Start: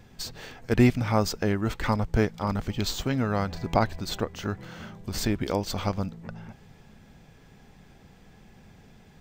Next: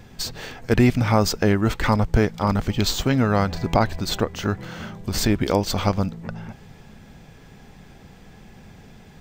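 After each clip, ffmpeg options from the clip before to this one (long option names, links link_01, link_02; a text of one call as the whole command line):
ffmpeg -i in.wav -af "alimiter=level_in=12dB:limit=-1dB:release=50:level=0:latency=1,volume=-5dB" out.wav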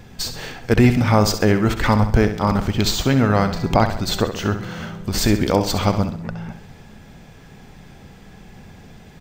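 ffmpeg -i in.wav -af "aecho=1:1:66|132|198|264|330:0.316|0.145|0.0669|0.0308|0.0142,volume=2.5dB" out.wav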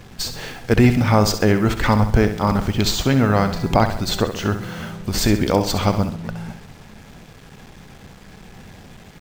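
ffmpeg -i in.wav -af "acrusher=bits=6:mix=0:aa=0.5" out.wav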